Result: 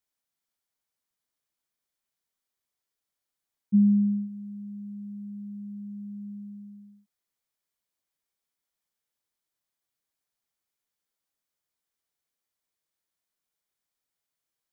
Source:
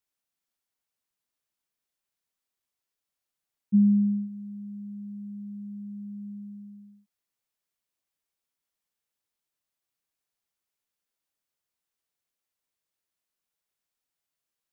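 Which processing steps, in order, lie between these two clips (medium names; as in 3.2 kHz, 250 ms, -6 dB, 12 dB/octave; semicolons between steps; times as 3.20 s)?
band-stop 2.7 kHz, Q 14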